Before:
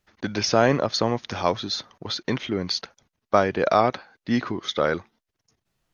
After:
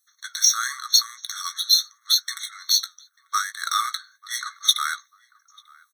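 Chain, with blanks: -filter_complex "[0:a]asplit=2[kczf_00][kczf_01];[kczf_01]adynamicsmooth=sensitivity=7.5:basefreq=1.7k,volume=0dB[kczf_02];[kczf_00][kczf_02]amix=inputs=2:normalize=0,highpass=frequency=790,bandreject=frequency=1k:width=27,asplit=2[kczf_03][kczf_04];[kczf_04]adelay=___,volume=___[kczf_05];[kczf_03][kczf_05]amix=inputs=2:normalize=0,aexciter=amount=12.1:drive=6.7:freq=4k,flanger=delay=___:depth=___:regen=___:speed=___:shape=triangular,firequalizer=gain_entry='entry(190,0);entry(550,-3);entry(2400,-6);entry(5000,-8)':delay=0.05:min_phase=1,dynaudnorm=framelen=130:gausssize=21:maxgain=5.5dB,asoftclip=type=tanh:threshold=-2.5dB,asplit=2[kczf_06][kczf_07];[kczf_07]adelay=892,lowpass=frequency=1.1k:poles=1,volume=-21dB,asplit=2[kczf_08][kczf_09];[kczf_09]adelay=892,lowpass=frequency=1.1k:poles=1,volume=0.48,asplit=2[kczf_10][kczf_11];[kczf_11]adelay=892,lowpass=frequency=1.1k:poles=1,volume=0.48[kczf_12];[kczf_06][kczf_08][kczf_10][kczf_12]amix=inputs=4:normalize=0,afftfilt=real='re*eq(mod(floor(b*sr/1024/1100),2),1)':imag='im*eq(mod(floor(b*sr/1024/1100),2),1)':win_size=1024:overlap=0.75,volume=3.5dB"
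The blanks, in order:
17, -12dB, 3.9, 8.1, -72, 0.85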